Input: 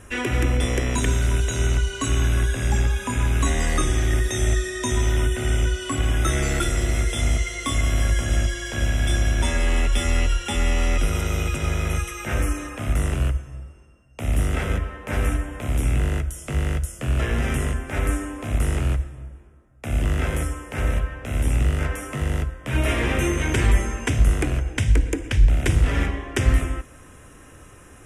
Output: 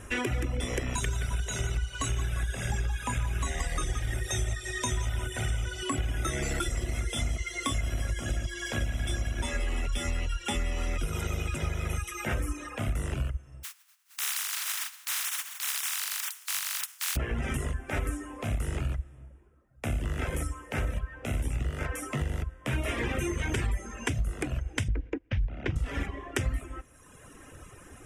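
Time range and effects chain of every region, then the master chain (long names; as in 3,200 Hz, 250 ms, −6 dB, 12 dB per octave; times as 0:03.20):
0:00.94–0:05.83: parametric band 280 Hz −7.5 dB 0.74 octaves + repeating echo 174 ms, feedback 46%, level −8 dB
0:13.63–0:17.15: compressing power law on the bin magnitudes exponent 0.12 + high-pass filter 1,100 Hz 24 dB per octave + downward compressor 4 to 1, threshold −25 dBFS
0:24.88–0:25.76: Gaussian smoothing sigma 2.2 samples + noise gate −27 dBFS, range −19 dB
whole clip: reverb reduction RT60 1.1 s; downward compressor 5 to 1, threshold −27 dBFS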